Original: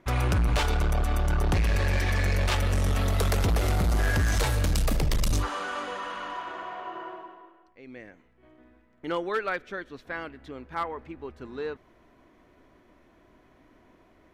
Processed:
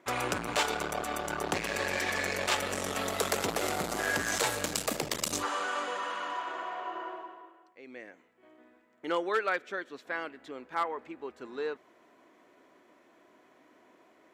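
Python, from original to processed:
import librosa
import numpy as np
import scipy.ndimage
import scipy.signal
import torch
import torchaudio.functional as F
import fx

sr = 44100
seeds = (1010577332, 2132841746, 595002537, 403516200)

y = scipy.signal.sosfilt(scipy.signal.butter(2, 310.0, 'highpass', fs=sr, output='sos'), x)
y = fx.peak_eq(y, sr, hz=7400.0, db=6.5, octaves=0.28)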